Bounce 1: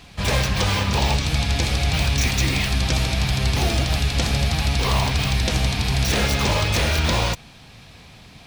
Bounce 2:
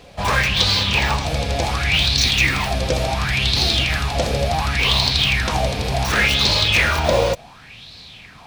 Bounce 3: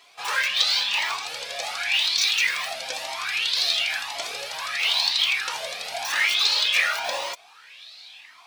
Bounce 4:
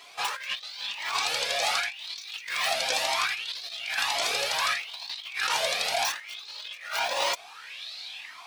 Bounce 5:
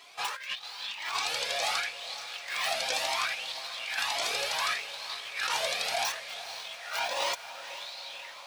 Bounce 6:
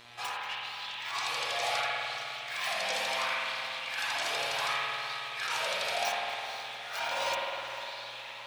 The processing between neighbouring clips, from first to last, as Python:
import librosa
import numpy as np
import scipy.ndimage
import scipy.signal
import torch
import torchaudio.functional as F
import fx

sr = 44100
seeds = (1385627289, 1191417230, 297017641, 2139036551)

y1 = fx.bell_lfo(x, sr, hz=0.69, low_hz=500.0, high_hz=4300.0, db=17)
y1 = y1 * librosa.db_to_amplitude(-2.0)
y2 = scipy.signal.sosfilt(scipy.signal.bessel(2, 1200.0, 'highpass', norm='mag', fs=sr, output='sos'), y1)
y2 = fx.comb_cascade(y2, sr, direction='rising', hz=0.96)
y2 = y2 * librosa.db_to_amplitude(1.0)
y3 = fx.over_compress(y2, sr, threshold_db=-30.0, ratio=-0.5)
y4 = fx.echo_diffused(y3, sr, ms=495, feedback_pct=63, wet_db=-13.0)
y4 = y4 * librosa.db_to_amplitude(-3.5)
y5 = fx.dmg_buzz(y4, sr, base_hz=120.0, harmonics=35, level_db=-51.0, tilt_db=0, odd_only=False)
y5 = fx.rev_spring(y5, sr, rt60_s=2.5, pass_ms=(51,), chirp_ms=80, drr_db=-3.5)
y5 = y5 * librosa.db_to_amplitude(-5.0)